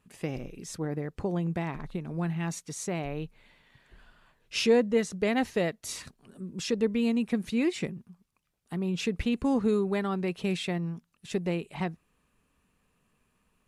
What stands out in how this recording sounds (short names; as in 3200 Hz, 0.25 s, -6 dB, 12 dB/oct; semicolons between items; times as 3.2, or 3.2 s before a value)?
noise floor -74 dBFS; spectral tilt -5.5 dB/oct